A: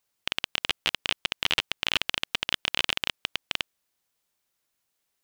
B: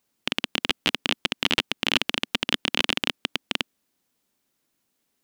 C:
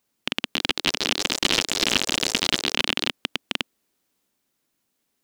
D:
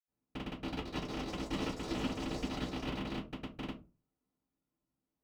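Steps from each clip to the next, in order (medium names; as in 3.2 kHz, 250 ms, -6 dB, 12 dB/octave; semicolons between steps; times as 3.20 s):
peaking EQ 250 Hz +13 dB 1.3 oct; trim +2.5 dB
ever faster or slower copies 362 ms, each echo +5 st, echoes 3
reverberation RT60 0.30 s, pre-delay 76 ms; trim +9 dB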